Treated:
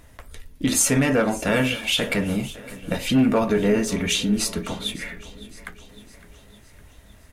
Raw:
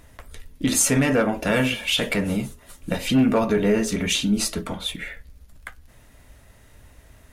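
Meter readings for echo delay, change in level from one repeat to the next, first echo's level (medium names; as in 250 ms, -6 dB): 559 ms, -5.5 dB, -18.0 dB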